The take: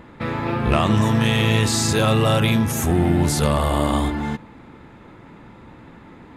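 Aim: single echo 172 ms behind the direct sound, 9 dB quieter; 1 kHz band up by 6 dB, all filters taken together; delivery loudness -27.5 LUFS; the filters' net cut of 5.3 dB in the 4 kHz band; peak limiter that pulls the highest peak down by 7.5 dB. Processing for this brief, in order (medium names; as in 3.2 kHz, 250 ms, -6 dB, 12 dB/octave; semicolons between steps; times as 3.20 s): peaking EQ 1 kHz +8 dB; peaking EQ 4 kHz -7.5 dB; peak limiter -9.5 dBFS; delay 172 ms -9 dB; trim -8 dB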